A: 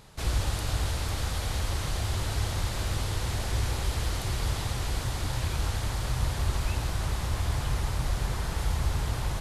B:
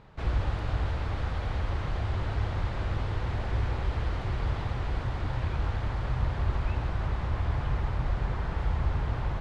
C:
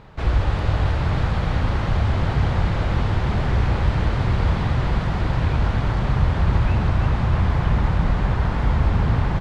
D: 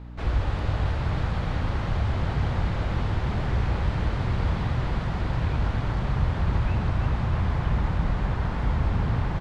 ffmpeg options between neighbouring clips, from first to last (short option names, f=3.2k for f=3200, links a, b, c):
-af "lowpass=2.1k"
-filter_complex "[0:a]asplit=9[a][b][c][d][e][f][g][h][i];[b]adelay=318,afreqshift=37,volume=-7dB[j];[c]adelay=636,afreqshift=74,volume=-11.6dB[k];[d]adelay=954,afreqshift=111,volume=-16.2dB[l];[e]adelay=1272,afreqshift=148,volume=-20.7dB[m];[f]adelay=1590,afreqshift=185,volume=-25.3dB[n];[g]adelay=1908,afreqshift=222,volume=-29.9dB[o];[h]adelay=2226,afreqshift=259,volume=-34.5dB[p];[i]adelay=2544,afreqshift=296,volume=-39.1dB[q];[a][j][k][l][m][n][o][p][q]amix=inputs=9:normalize=0,volume=8.5dB"
-af "aeval=exprs='val(0)+0.0224*(sin(2*PI*60*n/s)+sin(2*PI*2*60*n/s)/2+sin(2*PI*3*60*n/s)/3+sin(2*PI*4*60*n/s)/4+sin(2*PI*5*60*n/s)/5)':c=same,volume=-5.5dB"